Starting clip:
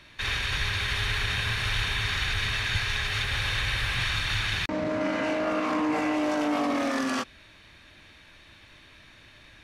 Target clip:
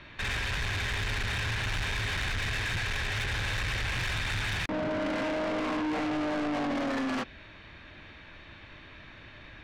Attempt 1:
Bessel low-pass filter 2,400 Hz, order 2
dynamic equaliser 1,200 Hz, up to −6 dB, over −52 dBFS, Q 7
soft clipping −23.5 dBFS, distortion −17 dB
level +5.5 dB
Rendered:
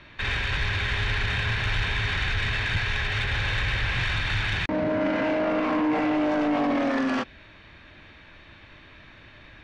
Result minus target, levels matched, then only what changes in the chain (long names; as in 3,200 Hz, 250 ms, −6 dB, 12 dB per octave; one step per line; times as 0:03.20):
soft clipping: distortion −9 dB
change: soft clipping −34 dBFS, distortion −7 dB